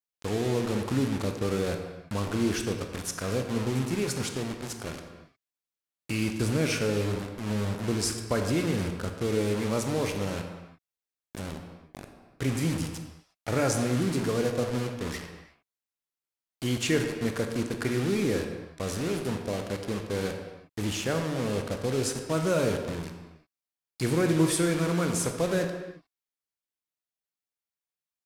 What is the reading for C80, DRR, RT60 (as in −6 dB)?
7.5 dB, 4.5 dB, non-exponential decay